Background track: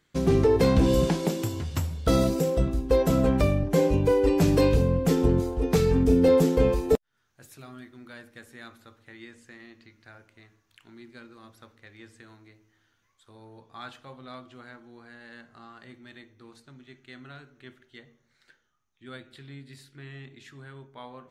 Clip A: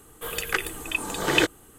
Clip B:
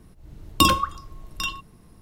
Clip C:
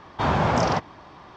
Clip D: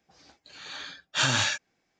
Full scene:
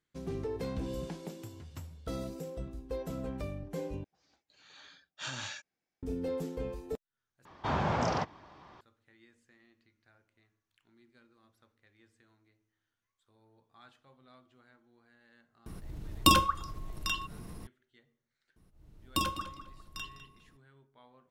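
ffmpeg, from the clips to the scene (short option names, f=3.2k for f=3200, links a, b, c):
-filter_complex "[2:a]asplit=2[a][b];[0:a]volume=-16.5dB[c];[a]acompressor=mode=upward:threshold=-27dB:ratio=2.5:attack=3.2:release=140:knee=2.83:detection=peak[d];[b]asplit=2[e][f];[f]adelay=202,lowpass=f=4.1k:p=1,volume=-11dB,asplit=2[g][h];[h]adelay=202,lowpass=f=4.1k:p=1,volume=0.29,asplit=2[i][j];[j]adelay=202,lowpass=f=4.1k:p=1,volume=0.29[k];[e][g][i][k]amix=inputs=4:normalize=0[l];[c]asplit=3[m][n][o];[m]atrim=end=4.044[p];[4:a]atrim=end=1.99,asetpts=PTS-STARTPTS,volume=-15.5dB[q];[n]atrim=start=6.026:end=7.454[r];[3:a]atrim=end=1.36,asetpts=PTS-STARTPTS,volume=-9dB[s];[o]atrim=start=8.806[t];[d]atrim=end=2.01,asetpts=PTS-STARTPTS,volume=-5dB,afade=t=in:d=0.004:c=hsin,afade=t=out:st=2.006:d=0.004:c=hsin,adelay=15660[u];[l]atrim=end=2.01,asetpts=PTS-STARTPTS,volume=-14dB,afade=t=in:d=0.004:c=hsin,afade=t=out:st=2.006:d=0.004:c=hsin,adelay=18560[v];[p][q]acrossfade=d=0.004:c1=hsin:c2=hsin[w];[w][r]acrossfade=d=0.004:c1=hsin:c2=hsin[x];[x][s]acrossfade=d=0.004:c1=hsin:c2=hsin[y];[y][t]acrossfade=d=0.004:c1=hsin:c2=hsin[z];[z][u][v]amix=inputs=3:normalize=0"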